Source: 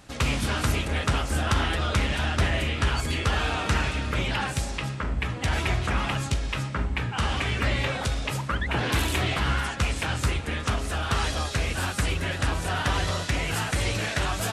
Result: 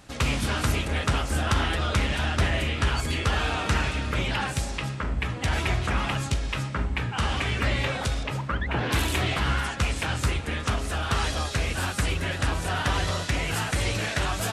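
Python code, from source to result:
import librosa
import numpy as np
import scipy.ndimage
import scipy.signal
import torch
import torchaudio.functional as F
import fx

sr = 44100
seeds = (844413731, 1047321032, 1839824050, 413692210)

y = fx.lowpass(x, sr, hz=2600.0, slope=6, at=(8.23, 8.91))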